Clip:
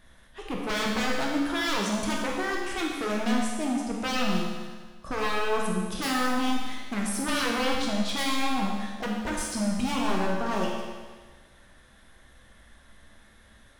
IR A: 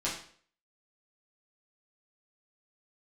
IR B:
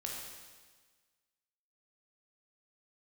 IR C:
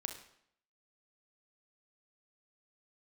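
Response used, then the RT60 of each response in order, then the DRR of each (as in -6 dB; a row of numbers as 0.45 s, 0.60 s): B; 0.50 s, 1.5 s, 0.70 s; -7.5 dB, -2.0 dB, 5.0 dB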